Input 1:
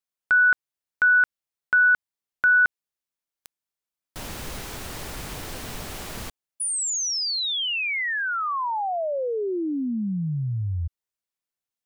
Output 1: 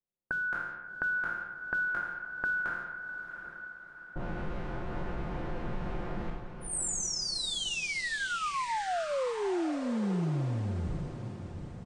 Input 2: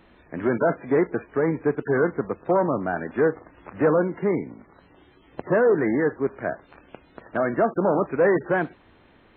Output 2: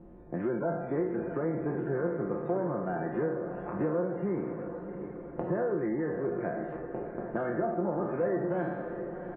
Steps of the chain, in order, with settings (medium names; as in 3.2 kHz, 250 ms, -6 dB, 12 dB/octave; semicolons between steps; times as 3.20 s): spectral sustain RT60 0.76 s; level-controlled noise filter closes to 580 Hz, open at -18.5 dBFS; tilt shelf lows +3 dB, about 750 Hz; comb 5.7 ms, depth 54%; dynamic bell 2.4 kHz, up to -5 dB, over -39 dBFS, Q 0.76; compression 3:1, threshold -33 dBFS; echo that smears into a reverb 707 ms, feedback 52%, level -9 dB